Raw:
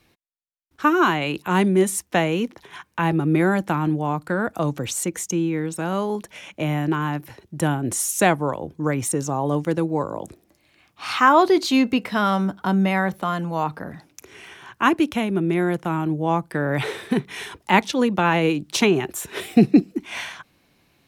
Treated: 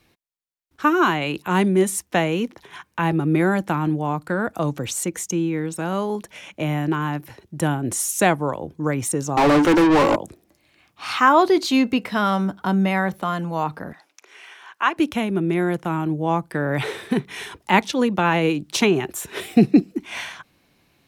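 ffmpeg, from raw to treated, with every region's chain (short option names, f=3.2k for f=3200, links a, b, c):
-filter_complex "[0:a]asettb=1/sr,asplit=3[a][b][c];[a]atrim=end=9.374[d];[b]atrim=start=9.37:end=10.16,asetpts=PTS-STARTPTS,afade=t=in:d=0.004:c=qsin,afade=t=out:st=0.786:d=0.004:c=qsin,lowshelf=f=240:t=q:w=3:g=-7,asplit=2[e][f];[f]highpass=f=720:p=1,volume=37dB,asoftclip=type=tanh:threshold=-9dB[g];[e][g]amix=inputs=2:normalize=0,lowpass=f=2.6k:p=1,volume=-6dB[h];[c]atrim=start=10.156[i];[d][h]acrossfade=d=0.004:c1=hsin:c2=qsin[j];[j][i]acrossfade=d=0.004:c1=qsin:c2=hsin,asettb=1/sr,asplit=3[k][l][m];[k]atrim=end=13.934[n];[l]atrim=start=13.93:end=14.97,asetpts=PTS-STARTPTS,afade=t=in:d=0.004:c=qsin,afade=t=out:st=1.036:d=0.004:c=qsin,acrossover=split=6400[o][p];[p]acompressor=threshold=-56dB:ratio=4:attack=1:release=60[q];[o][q]amix=inputs=2:normalize=0,highpass=690,highshelf=f=7.7k:g=-5[r];[m]atrim=start=14.966[s];[n][r]acrossfade=d=0.004:c1=hsin:c2=qsin[t];[t][s]acrossfade=d=0.004:c1=qsin:c2=hsin"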